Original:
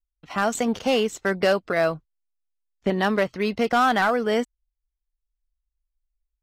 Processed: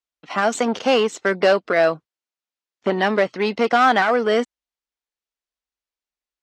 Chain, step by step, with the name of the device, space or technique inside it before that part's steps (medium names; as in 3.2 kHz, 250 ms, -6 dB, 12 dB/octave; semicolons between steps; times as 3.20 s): public-address speaker with an overloaded transformer (transformer saturation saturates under 370 Hz; band-pass 250–6400 Hz); trim +6 dB